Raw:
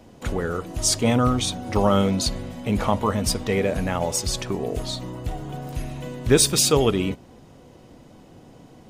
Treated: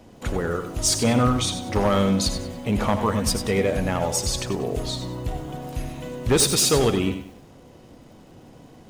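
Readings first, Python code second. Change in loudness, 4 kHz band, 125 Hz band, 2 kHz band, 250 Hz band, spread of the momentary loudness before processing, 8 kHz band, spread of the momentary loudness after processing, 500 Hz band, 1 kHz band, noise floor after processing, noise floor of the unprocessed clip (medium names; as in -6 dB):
0.0 dB, 0.0 dB, 0.0 dB, +0.5 dB, 0.0 dB, 15 LU, 0.0 dB, 13 LU, -0.5 dB, -0.5 dB, -49 dBFS, -49 dBFS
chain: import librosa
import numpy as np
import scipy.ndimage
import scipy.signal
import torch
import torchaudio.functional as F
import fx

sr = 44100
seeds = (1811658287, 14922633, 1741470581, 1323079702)

p1 = np.clip(x, -10.0 ** (-13.5 / 20.0), 10.0 ** (-13.5 / 20.0))
p2 = p1 + fx.echo_single(p1, sr, ms=83, db=-12.5, dry=0)
y = fx.echo_crushed(p2, sr, ms=97, feedback_pct=35, bits=8, wet_db=-11)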